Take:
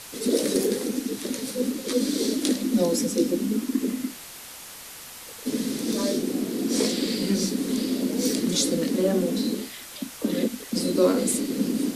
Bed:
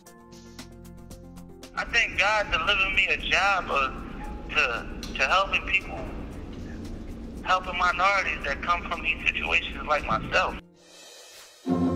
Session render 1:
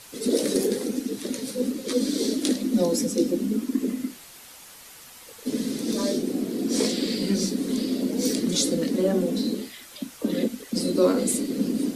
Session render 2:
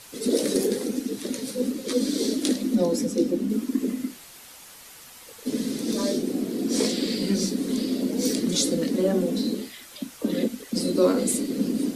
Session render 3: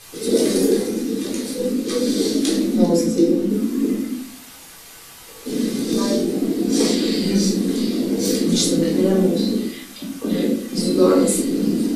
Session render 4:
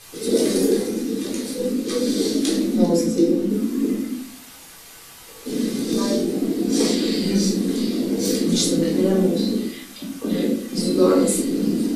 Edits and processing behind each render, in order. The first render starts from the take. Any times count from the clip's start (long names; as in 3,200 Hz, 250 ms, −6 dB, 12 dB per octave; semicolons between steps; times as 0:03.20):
broadband denoise 6 dB, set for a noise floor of −42 dBFS
0:02.75–0:03.50: high-shelf EQ 3,700 Hz −6 dB
rectangular room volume 560 cubic metres, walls furnished, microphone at 3.8 metres
level −1.5 dB